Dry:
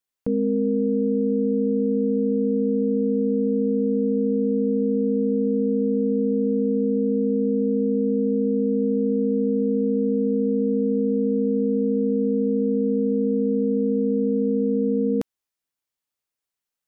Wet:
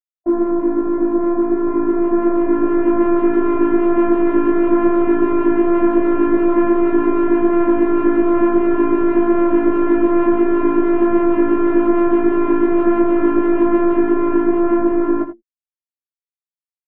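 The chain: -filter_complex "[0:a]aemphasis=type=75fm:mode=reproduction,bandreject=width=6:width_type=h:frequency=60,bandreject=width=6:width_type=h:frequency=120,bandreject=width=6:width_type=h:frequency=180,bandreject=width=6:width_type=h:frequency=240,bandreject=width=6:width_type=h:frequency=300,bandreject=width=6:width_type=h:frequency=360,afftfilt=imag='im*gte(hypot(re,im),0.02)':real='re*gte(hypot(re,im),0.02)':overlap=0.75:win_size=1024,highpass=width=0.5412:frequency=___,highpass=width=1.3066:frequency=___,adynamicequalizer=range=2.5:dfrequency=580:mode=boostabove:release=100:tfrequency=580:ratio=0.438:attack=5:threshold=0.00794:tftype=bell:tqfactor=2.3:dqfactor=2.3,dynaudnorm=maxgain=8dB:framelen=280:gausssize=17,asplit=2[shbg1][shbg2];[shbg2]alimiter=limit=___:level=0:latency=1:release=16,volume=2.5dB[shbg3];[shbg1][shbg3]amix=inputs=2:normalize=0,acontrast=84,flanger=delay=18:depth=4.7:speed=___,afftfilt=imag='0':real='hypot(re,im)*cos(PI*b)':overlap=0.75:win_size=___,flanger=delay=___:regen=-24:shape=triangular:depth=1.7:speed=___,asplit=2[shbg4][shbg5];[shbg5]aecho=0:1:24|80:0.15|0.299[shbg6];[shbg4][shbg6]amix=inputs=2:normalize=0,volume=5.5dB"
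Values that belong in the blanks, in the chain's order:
130, 130, -13.5dB, 2.7, 512, 7.8, 0.56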